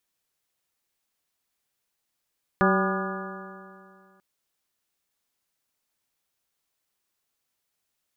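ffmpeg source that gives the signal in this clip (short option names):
-f lavfi -i "aevalsrc='0.0891*pow(10,-3*t/2.28)*sin(2*PI*189.35*t)+0.0708*pow(10,-3*t/2.28)*sin(2*PI*380.79*t)+0.0531*pow(10,-3*t/2.28)*sin(2*PI*576.36*t)+0.0473*pow(10,-3*t/2.28)*sin(2*PI*778.06*t)+0.0355*pow(10,-3*t/2.28)*sin(2*PI*987.74*t)+0.075*pow(10,-3*t/2.28)*sin(2*PI*1207.16*t)+0.0473*pow(10,-3*t/2.28)*sin(2*PI*1437.94*t)+0.0398*pow(10,-3*t/2.28)*sin(2*PI*1681.52*t)':d=1.59:s=44100"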